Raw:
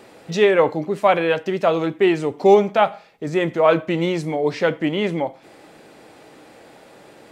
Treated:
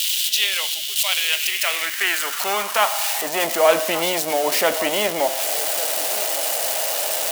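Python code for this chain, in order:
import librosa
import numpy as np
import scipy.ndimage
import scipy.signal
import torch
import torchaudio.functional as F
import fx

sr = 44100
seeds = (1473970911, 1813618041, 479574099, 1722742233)

p1 = x + 0.5 * 10.0 ** (-16.5 / 20.0) * np.diff(np.sign(x), prepend=np.sign(x[:1]))
p2 = fx.small_body(p1, sr, hz=(230.0, 640.0, 2900.0), ring_ms=25, db=8)
p3 = fx.filter_sweep_highpass(p2, sr, from_hz=3200.0, to_hz=610.0, start_s=1.11, end_s=3.59, q=4.1)
p4 = p3 + fx.echo_single(p3, sr, ms=1156, db=-23.0, dry=0)
p5 = fx.spectral_comp(p4, sr, ratio=2.0)
y = p5 * librosa.db_to_amplitude(-14.0)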